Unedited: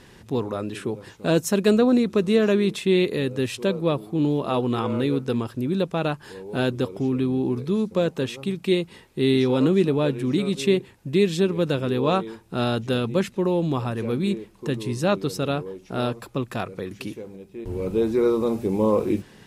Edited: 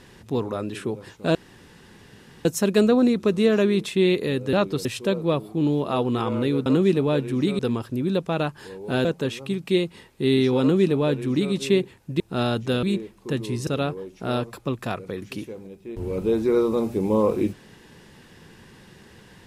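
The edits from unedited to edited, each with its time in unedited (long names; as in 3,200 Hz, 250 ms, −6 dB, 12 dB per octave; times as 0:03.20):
0:01.35: splice in room tone 1.10 s
0:06.70–0:08.02: remove
0:09.57–0:10.50: duplicate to 0:05.24
0:11.17–0:12.41: remove
0:13.04–0:14.20: remove
0:15.04–0:15.36: move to 0:03.43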